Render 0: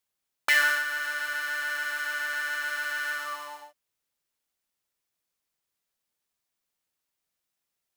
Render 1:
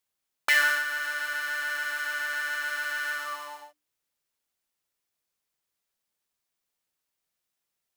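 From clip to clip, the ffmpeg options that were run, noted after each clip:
-af "bandreject=f=60:t=h:w=6,bandreject=f=120:t=h:w=6,bandreject=f=180:t=h:w=6,bandreject=f=240:t=h:w=6,bandreject=f=300:t=h:w=6"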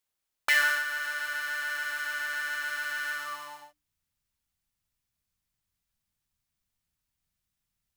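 -af "asubboost=boost=12:cutoff=130,volume=-1.5dB"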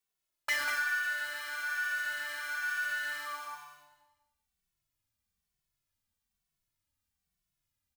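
-filter_complex "[0:a]asoftclip=type=tanh:threshold=-23dB,asplit=2[a][b];[b]aecho=0:1:192|384|576|768:0.473|0.137|0.0398|0.0115[c];[a][c]amix=inputs=2:normalize=0,asplit=2[d][e];[e]adelay=2.2,afreqshift=-1.1[f];[d][f]amix=inputs=2:normalize=1"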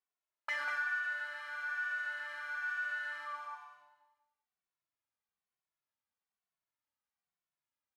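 -af "bandpass=f=980:t=q:w=0.84:csg=0,volume=-1.5dB"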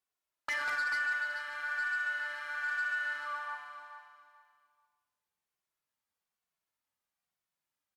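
-filter_complex "[0:a]aeval=exprs='0.0531*(cos(1*acos(clip(val(0)/0.0531,-1,1)))-cos(1*PI/2))+0.000841*(cos(2*acos(clip(val(0)/0.0531,-1,1)))-cos(2*PI/2))+0.0168*(cos(5*acos(clip(val(0)/0.0531,-1,1)))-cos(5*PI/2))+0.00841*(cos(7*acos(clip(val(0)/0.0531,-1,1)))-cos(7*PI/2))':c=same,asplit=2[a][b];[b]aecho=0:1:436|872|1308:0.316|0.0822|0.0214[c];[a][c]amix=inputs=2:normalize=0" -ar 48000 -c:a libmp3lame -b:a 96k

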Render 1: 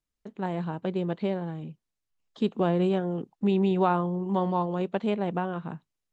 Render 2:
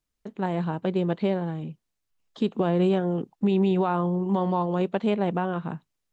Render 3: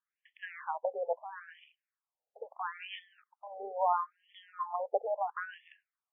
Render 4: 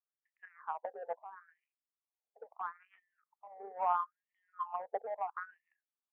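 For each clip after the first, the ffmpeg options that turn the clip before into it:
-af "alimiter=limit=-18.5dB:level=0:latency=1:release=116,volume=4dB"
-af "afftfilt=real='re*between(b*sr/1024,590*pow(2500/590,0.5+0.5*sin(2*PI*0.75*pts/sr))/1.41,590*pow(2500/590,0.5+0.5*sin(2*PI*0.75*pts/sr))*1.41)':imag='im*between(b*sr/1024,590*pow(2500/590,0.5+0.5*sin(2*PI*0.75*pts/sr))/1.41,590*pow(2500/590,0.5+0.5*sin(2*PI*0.75*pts/sr))*1.41)':win_size=1024:overlap=0.75"
-af "adynamicsmooth=sensitivity=2.5:basefreq=840,highpass=240,equalizer=f=320:t=q:w=4:g=-6,equalizer=f=550:t=q:w=4:g=-8,equalizer=f=1.2k:t=q:w=4:g=4,lowpass=f=2k:w=0.5412,lowpass=f=2k:w=1.3066,volume=-2dB"

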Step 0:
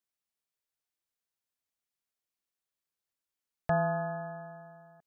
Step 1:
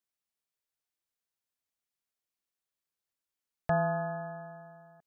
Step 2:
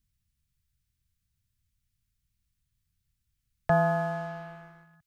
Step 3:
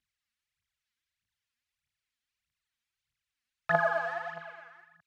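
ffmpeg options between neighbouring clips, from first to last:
-af anull
-filter_complex "[0:a]acrossover=split=120|1200[a][b][c];[a]acompressor=mode=upward:threshold=-58dB:ratio=2.5[d];[b]aeval=exprs='sgn(val(0))*max(abs(val(0))-0.00224,0)':c=same[e];[d][e][c]amix=inputs=3:normalize=0,volume=5dB"
-af "aphaser=in_gain=1:out_gain=1:delay=4.4:decay=0.75:speed=1.6:type=triangular,bandpass=f=2k:t=q:w=0.82:csg=0,volume=1dB"

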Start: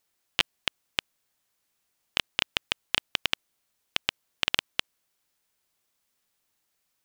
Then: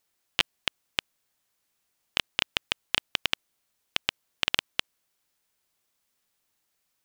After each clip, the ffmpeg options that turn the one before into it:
-af anull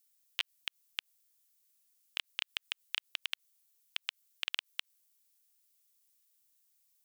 -filter_complex "[0:a]acrossover=split=3700[a][b];[b]acompressor=threshold=-42dB:ratio=4:attack=1:release=60[c];[a][c]amix=inputs=2:normalize=0,aderivative,volume=1dB"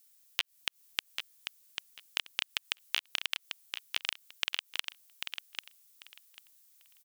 -filter_complex "[0:a]acompressor=threshold=-36dB:ratio=6,asplit=2[a][b];[b]aecho=0:1:793|1586|2379:0.473|0.0852|0.0153[c];[a][c]amix=inputs=2:normalize=0,volume=8.5dB"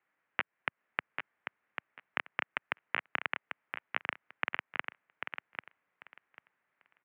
-af "highpass=f=180:t=q:w=0.5412,highpass=f=180:t=q:w=1.307,lowpass=f=2.1k:t=q:w=0.5176,lowpass=f=2.1k:t=q:w=0.7071,lowpass=f=2.1k:t=q:w=1.932,afreqshift=-64,volume=8.5dB"

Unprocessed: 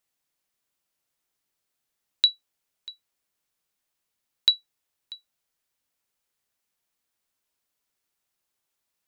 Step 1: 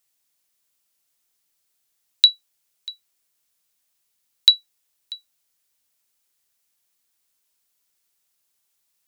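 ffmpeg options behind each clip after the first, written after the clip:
-af "highshelf=f=3k:g=10"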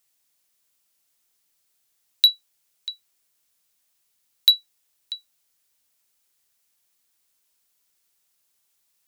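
-af "acontrast=88,volume=-5.5dB"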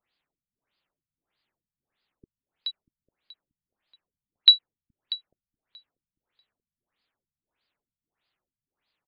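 -filter_complex "[0:a]asplit=2[a][b];[b]adelay=424,lowpass=f=3.7k:p=1,volume=-15dB,asplit=2[c][d];[d]adelay=424,lowpass=f=3.7k:p=1,volume=0.5,asplit=2[e][f];[f]adelay=424,lowpass=f=3.7k:p=1,volume=0.5,asplit=2[g][h];[h]adelay=424,lowpass=f=3.7k:p=1,volume=0.5,asplit=2[i][j];[j]adelay=424,lowpass=f=3.7k:p=1,volume=0.5[k];[a][c][e][g][i][k]amix=inputs=6:normalize=0,afftfilt=real='re*lt(b*sr/1024,200*pow(5100/200,0.5+0.5*sin(2*PI*1.6*pts/sr)))':imag='im*lt(b*sr/1024,200*pow(5100/200,0.5+0.5*sin(2*PI*1.6*pts/sr)))':win_size=1024:overlap=0.75,volume=1.5dB"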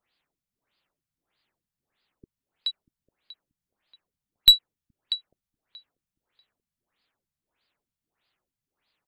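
-af "aeval=exprs='(tanh(2.82*val(0)+0.2)-tanh(0.2))/2.82':c=same,volume=3.5dB"

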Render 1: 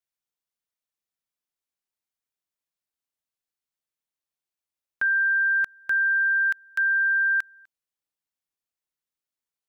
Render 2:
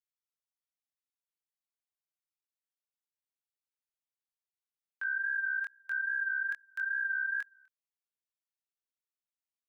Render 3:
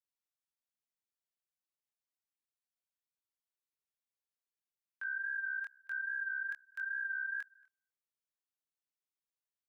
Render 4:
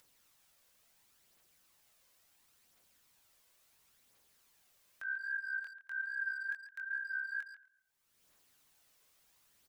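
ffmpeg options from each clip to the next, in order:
-af "flanger=delay=20:depth=5.8:speed=2.4,highpass=800,volume=-7.5dB"
-filter_complex "[0:a]asplit=2[a][b];[b]adelay=227.4,volume=-27dB,highshelf=f=4k:g=-5.12[c];[a][c]amix=inputs=2:normalize=0,volume=-5dB"
-filter_complex "[0:a]acompressor=mode=upward:threshold=-48dB:ratio=2.5,aphaser=in_gain=1:out_gain=1:delay=2:decay=0.36:speed=0.72:type=triangular,asplit=2[a][b];[b]adelay=140,highpass=300,lowpass=3.4k,asoftclip=type=hard:threshold=-36dB,volume=-11dB[c];[a][c]amix=inputs=2:normalize=0,volume=-2dB"

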